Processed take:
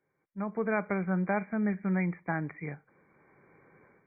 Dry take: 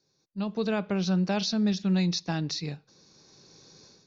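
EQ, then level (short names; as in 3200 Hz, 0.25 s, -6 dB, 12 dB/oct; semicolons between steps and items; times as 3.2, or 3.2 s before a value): brick-wall FIR low-pass 2400 Hz; tilt +3.5 dB/oct; low shelf 90 Hz +10 dB; +2.0 dB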